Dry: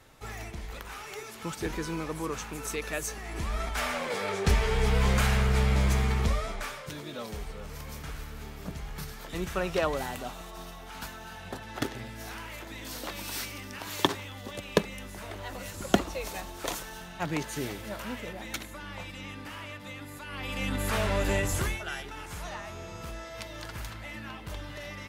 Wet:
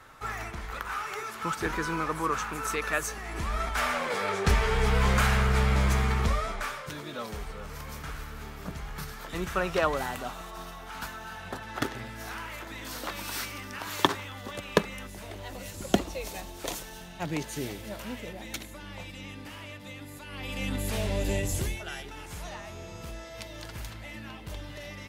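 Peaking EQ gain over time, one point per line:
peaking EQ 1.3 kHz 1.1 oct
+12 dB
from 3.07 s +5.5 dB
from 15.07 s -5.5 dB
from 20.80 s -13.5 dB
from 21.77 s -4.5 dB

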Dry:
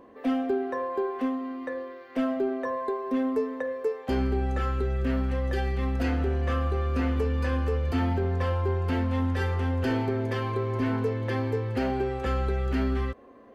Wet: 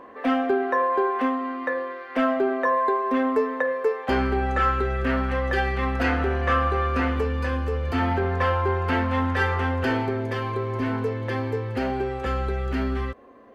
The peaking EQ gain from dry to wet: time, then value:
peaking EQ 1.4 kHz 2.7 oct
6.86 s +12.5 dB
7.67 s +2 dB
8.16 s +11.5 dB
9.64 s +11.5 dB
10.24 s +3.5 dB

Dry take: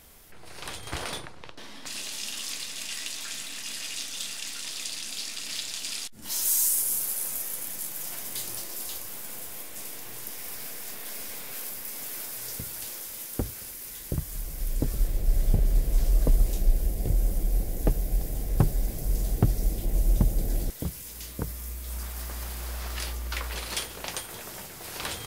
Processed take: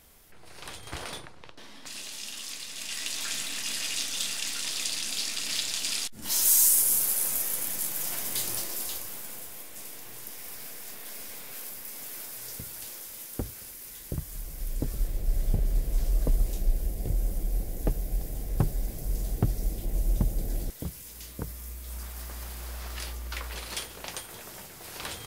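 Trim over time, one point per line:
2.62 s -4 dB
3.24 s +3.5 dB
8.59 s +3.5 dB
9.55 s -3.5 dB

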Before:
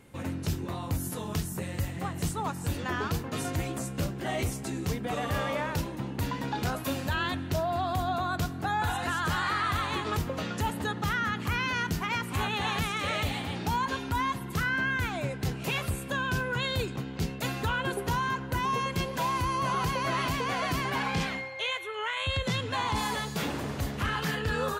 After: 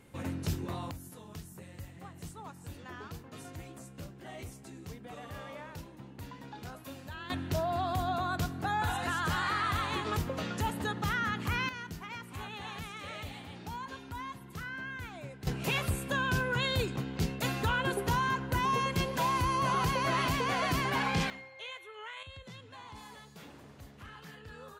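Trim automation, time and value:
-2.5 dB
from 0.91 s -14 dB
from 7.30 s -2.5 dB
from 11.69 s -12 dB
from 15.47 s -0.5 dB
from 21.30 s -12 dB
from 22.23 s -19 dB

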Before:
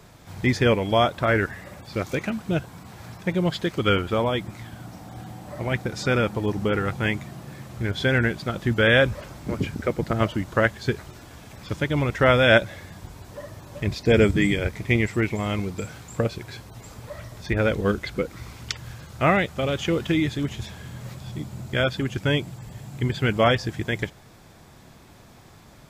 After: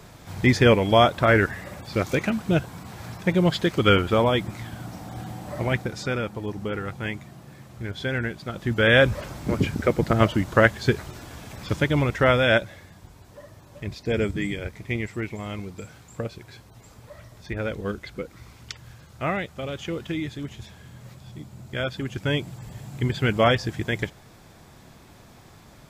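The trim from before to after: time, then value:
5.61 s +3 dB
6.19 s -6 dB
8.40 s -6 dB
9.17 s +3.5 dB
11.75 s +3.5 dB
12.95 s -7 dB
21.57 s -7 dB
22.65 s 0 dB

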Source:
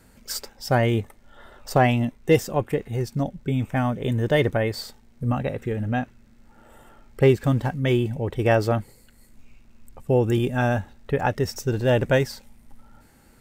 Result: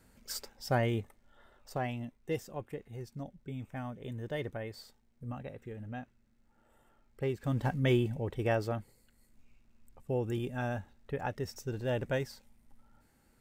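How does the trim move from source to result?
0.78 s -9 dB
1.77 s -17 dB
7.33 s -17 dB
7.72 s -4.5 dB
8.77 s -13 dB

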